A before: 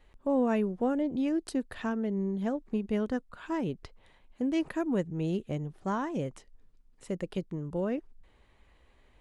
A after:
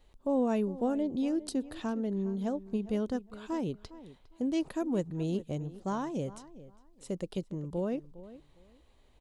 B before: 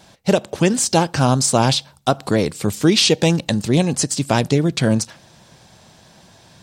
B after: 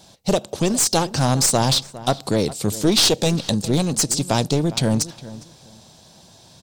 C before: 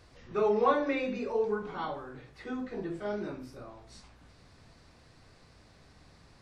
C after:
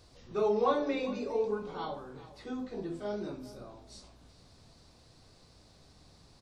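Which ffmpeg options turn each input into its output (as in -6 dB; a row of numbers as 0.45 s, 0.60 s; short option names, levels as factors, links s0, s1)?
-filter_complex "[0:a]firequalizer=gain_entry='entry(730,0);entry(1800,-7);entry(3800,4)':delay=0.05:min_phase=1,aeval=exprs='clip(val(0),-1,0.178)':c=same,asplit=2[s0][s1];[s1]adelay=407,lowpass=f=2600:p=1,volume=0.15,asplit=2[s2][s3];[s3]adelay=407,lowpass=f=2600:p=1,volume=0.21[s4];[s2][s4]amix=inputs=2:normalize=0[s5];[s0][s5]amix=inputs=2:normalize=0,volume=0.841"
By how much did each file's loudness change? -1.5 LU, -2.0 LU, -2.0 LU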